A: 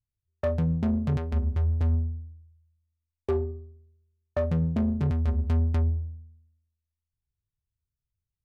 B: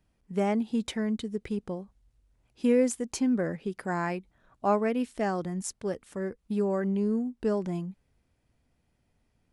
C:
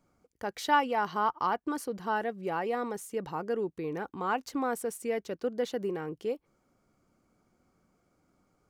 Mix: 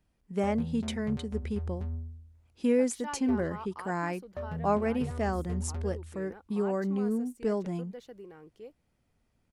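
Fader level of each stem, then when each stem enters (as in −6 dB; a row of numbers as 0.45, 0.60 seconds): −11.5, −2.0, −14.5 decibels; 0.00, 0.00, 2.35 seconds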